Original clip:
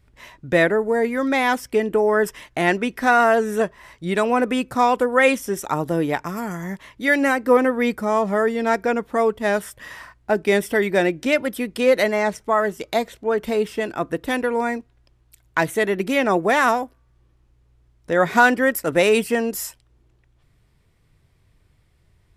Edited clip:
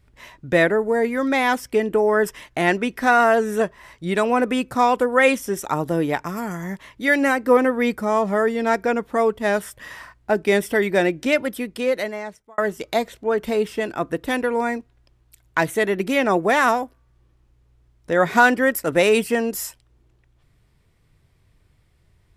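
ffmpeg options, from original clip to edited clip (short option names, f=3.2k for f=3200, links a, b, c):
-filter_complex "[0:a]asplit=2[a][b];[a]atrim=end=12.58,asetpts=PTS-STARTPTS,afade=t=out:st=11.37:d=1.21[c];[b]atrim=start=12.58,asetpts=PTS-STARTPTS,afade=t=in:d=0.004:c=hsin[d];[c][d]concat=n=2:v=0:a=1"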